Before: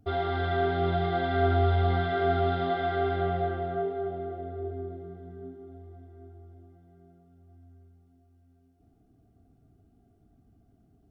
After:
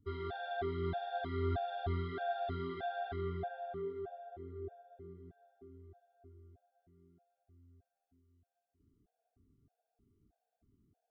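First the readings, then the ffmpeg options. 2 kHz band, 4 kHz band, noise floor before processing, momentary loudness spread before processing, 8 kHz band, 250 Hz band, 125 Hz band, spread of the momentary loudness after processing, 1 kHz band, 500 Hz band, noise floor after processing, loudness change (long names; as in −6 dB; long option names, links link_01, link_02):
−12.0 dB, −11.5 dB, −64 dBFS, 19 LU, can't be measured, −11.0 dB, −12.5 dB, 18 LU, −11.5 dB, −11.5 dB, below −85 dBFS, −11.5 dB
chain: -af "afftfilt=real='re*gt(sin(2*PI*1.6*pts/sr)*(1-2*mod(floor(b*sr/1024/470),2)),0)':imag='im*gt(sin(2*PI*1.6*pts/sr)*(1-2*mod(floor(b*sr/1024/470),2)),0)':win_size=1024:overlap=0.75,volume=-8.5dB"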